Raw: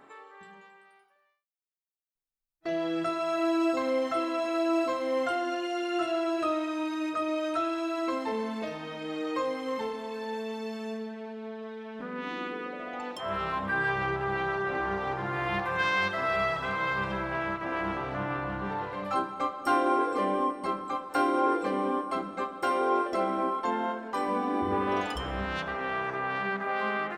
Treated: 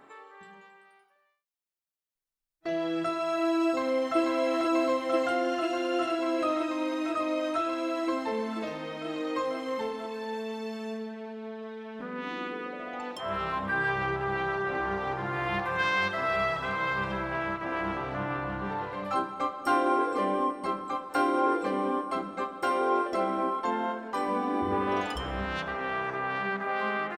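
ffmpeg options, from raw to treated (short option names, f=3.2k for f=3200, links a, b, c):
-filter_complex "[0:a]asplit=2[a][b];[b]afade=t=in:st=3.66:d=0.01,afade=t=out:st=4.18:d=0.01,aecho=0:1:490|980|1470|1960|2450|2940|3430|3920|4410|4900|5390|5880:0.794328|0.675179|0.573902|0.487817|0.414644|0.352448|0.299581|0.254643|0.216447|0.18398|0.156383|0.132925[c];[a][c]amix=inputs=2:normalize=0"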